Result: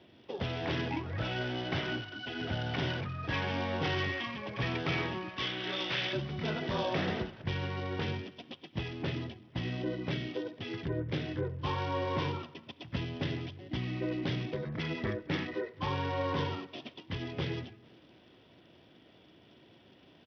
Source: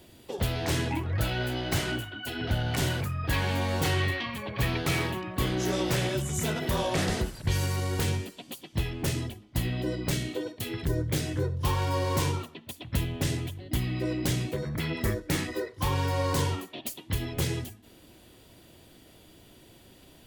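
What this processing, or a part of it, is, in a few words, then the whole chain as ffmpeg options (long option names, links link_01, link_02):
Bluetooth headset: -filter_complex "[0:a]asettb=1/sr,asplit=3[link_01][link_02][link_03];[link_01]atrim=end=5.294[link_04];[link_02]atrim=start=5.29:end=6.13,asetpts=PTS-STARTPTS,afade=type=in:duration=0.004:curve=qsin,afade=type=out:start_time=0.836:duration=0.004:curve=qsin,tiltshelf=frequency=1300:gain=-9.5[link_05];[link_03]atrim=start=6.126[link_06];[link_04][link_05]acrossfade=duration=0.004:curve1=hsin:curve2=qsin[link_07];[link_07][link_06]acrossfade=duration=0.004:curve1=qsin:curve2=hsin,highpass=120,asplit=2[link_08][link_09];[link_09]adelay=220,lowpass=frequency=4600:poles=1,volume=-23dB,asplit=2[link_10][link_11];[link_11]adelay=220,lowpass=frequency=4600:poles=1,volume=0.4,asplit=2[link_12][link_13];[link_13]adelay=220,lowpass=frequency=4600:poles=1,volume=0.4[link_14];[link_08][link_10][link_12][link_14]amix=inputs=4:normalize=0,aresample=8000,aresample=44100,volume=-3.5dB" -ar 44100 -c:a sbc -b:a 64k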